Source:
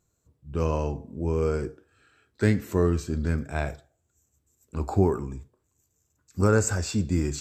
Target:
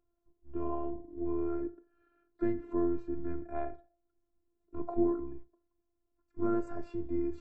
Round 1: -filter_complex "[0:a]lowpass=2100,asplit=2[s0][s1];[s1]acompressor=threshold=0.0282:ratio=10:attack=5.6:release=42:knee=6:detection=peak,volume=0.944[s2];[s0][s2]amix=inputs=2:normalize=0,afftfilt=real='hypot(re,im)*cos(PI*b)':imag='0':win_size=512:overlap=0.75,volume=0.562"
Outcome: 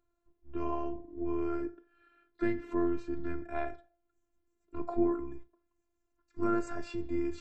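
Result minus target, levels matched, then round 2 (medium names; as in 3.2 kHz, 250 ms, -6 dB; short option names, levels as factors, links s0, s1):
2 kHz band +9.5 dB
-filter_complex "[0:a]lowpass=890,asplit=2[s0][s1];[s1]acompressor=threshold=0.0282:ratio=10:attack=5.6:release=42:knee=6:detection=peak,volume=0.944[s2];[s0][s2]amix=inputs=2:normalize=0,afftfilt=real='hypot(re,im)*cos(PI*b)':imag='0':win_size=512:overlap=0.75,volume=0.562"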